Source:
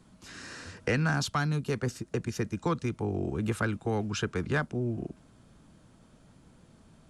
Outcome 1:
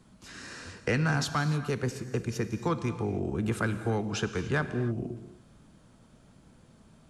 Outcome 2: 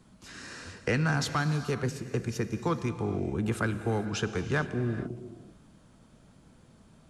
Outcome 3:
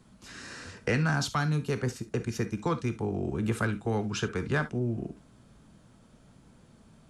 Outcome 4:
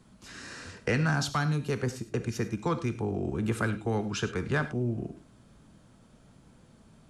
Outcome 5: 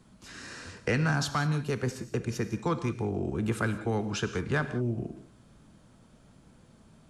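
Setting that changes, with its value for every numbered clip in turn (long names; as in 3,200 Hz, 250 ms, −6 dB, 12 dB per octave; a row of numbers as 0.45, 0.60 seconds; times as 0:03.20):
reverb whose tail is shaped and stops, gate: 320, 480, 90, 130, 210 milliseconds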